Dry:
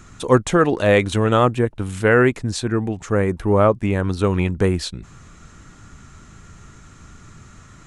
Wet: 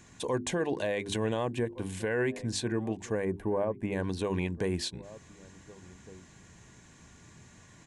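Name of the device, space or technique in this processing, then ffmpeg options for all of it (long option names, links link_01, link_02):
PA system with an anti-feedback notch: -filter_complex "[0:a]bandreject=frequency=50:width_type=h:width=6,bandreject=frequency=100:width_type=h:width=6,bandreject=frequency=150:width_type=h:width=6,bandreject=frequency=200:width_type=h:width=6,bandreject=frequency=250:width_type=h:width=6,bandreject=frequency=300:width_type=h:width=6,bandreject=frequency=350:width_type=h:width=6,bandreject=frequency=400:width_type=h:width=6,asettb=1/sr,asplit=3[link_01][link_02][link_03];[link_01]atrim=end=3.254[link_04];[link_02]atrim=start=3.25:end=3.92,asetpts=PTS-STARTPTS,afade=type=in:duration=0.004:curve=qsin,afade=type=out:start_time=0.666:duration=0.004:curve=qsin,equalizer=frequency=4900:width_type=o:width=2.1:gain=-13.5[link_05];[link_03]atrim=start=3.916[link_06];[link_04][link_05]acrossfade=duration=0.004:curve1=hsin:curve2=qsin[link_07];[link_07][link_06]acrossfade=duration=0.004:curve1=qsin:curve2=hsin,highpass=frequency=140:poles=1,asuperstop=centerf=1300:order=4:qfactor=3.8,asplit=2[link_08][link_09];[link_09]adelay=1458,volume=-24dB,highshelf=frequency=4000:gain=-32.8[link_10];[link_08][link_10]amix=inputs=2:normalize=0,alimiter=limit=-14.5dB:level=0:latency=1:release=124,volume=-6.5dB"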